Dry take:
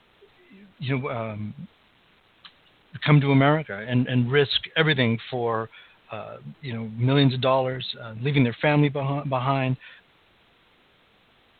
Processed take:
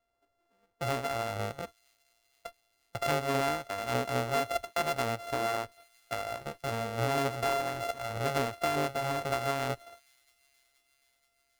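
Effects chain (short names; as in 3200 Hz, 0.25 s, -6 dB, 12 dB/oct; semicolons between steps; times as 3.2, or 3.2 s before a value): sample sorter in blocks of 64 samples; bell 170 Hz -14.5 dB 1.2 oct; compressor 3:1, threshold -37 dBFS, peak gain reduction 16 dB; gate -47 dBFS, range -25 dB; high shelf 2300 Hz -8.5 dB; thin delay 0.477 s, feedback 70%, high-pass 3800 Hz, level -23 dB; gain +7.5 dB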